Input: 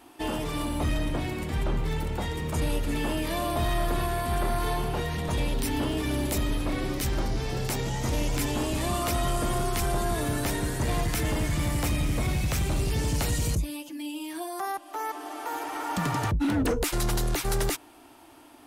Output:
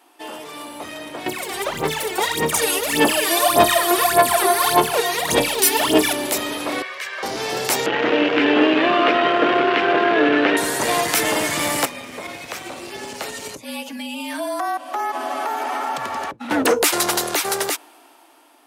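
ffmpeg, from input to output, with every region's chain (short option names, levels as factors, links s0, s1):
-filter_complex "[0:a]asettb=1/sr,asplit=3[s0][s1][s2];[s0]atrim=end=1.264[s3];[s1]atrim=start=1.26:end=6.13,asetpts=PTS-STARTPTS,afade=t=in:d=0.004:c=qsin,afade=t=out:st=4.866:d=0.004:c=qsin,highshelf=f=5000:g=7.5,aphaser=in_gain=1:out_gain=1:delay=2.8:decay=0.78:speed=1.7:type=sinusoidal[s4];[s2]atrim=start=6.126[s5];[s3][s4]acrossfade=d=0.004:c1=hsin:c2=qsin[s6];[s6][s5]acrossfade=d=0.004:c1=qsin:c2=hsin,asettb=1/sr,asplit=3[s7][s8][s9];[s7]atrim=end=6.824[s10];[s8]atrim=start=6.82:end=7.23,asetpts=PTS-STARTPTS,afade=t=in:d=0.004:c=qsin,afade=t=out:st=0.406:d=0.004:c=qsin,bandpass=f=1900:t=q:w=1.9,aecho=1:1:1.8:0.85,atrim=end_sample=18081[s11];[s9]atrim=start=7.226[s12];[s10][s11]acrossfade=d=0.004:c1=hsin:c2=qsin[s13];[s13][s12]acrossfade=d=0.004:c1=qsin:c2=hsin,asettb=1/sr,asplit=3[s14][s15][s16];[s14]atrim=end=7.864[s17];[s15]atrim=start=7.86:end=10.57,asetpts=PTS-STARTPTS,afade=t=in:d=0.004:c=qsin,afade=t=out:st=2.706:d=0.004:c=qsin,acrusher=bits=6:dc=4:mix=0:aa=0.000001,highpass=130,equalizer=f=300:t=q:w=4:g=9,equalizer=f=450:t=q:w=4:g=7,equalizer=f=930:t=q:w=4:g=-4,equalizer=f=1600:t=q:w=4:g=5,equalizer=f=2800:t=q:w=4:g=5,lowpass=f=3000:w=0.5412,lowpass=f=3000:w=1.3066[s18];[s16]atrim=start=10.566[s19];[s17][s18]acrossfade=d=0.004:c1=hsin:c2=qsin[s20];[s20][s19]acrossfade=d=0.004:c1=qsin:c2=hsin,asettb=1/sr,asplit=3[s21][s22][s23];[s21]atrim=end=11.854[s24];[s22]atrim=start=11.85:end=16.51,asetpts=PTS-STARTPTS,afade=t=in:d=0.004:c=qsin,afade=t=out:st=4.656:d=0.004:c=qsin,aemphasis=mode=reproduction:type=cd,acompressor=threshold=0.0224:ratio=12:attack=3.2:release=140:knee=1:detection=peak,afreqshift=-42[s25];[s23]atrim=start=16.506[s26];[s24][s25]acrossfade=d=0.004:c1=hsin:c2=qsin[s27];[s27][s26]acrossfade=d=0.004:c1=qsin:c2=hsin,highpass=440,dynaudnorm=f=300:g=11:m=5.62"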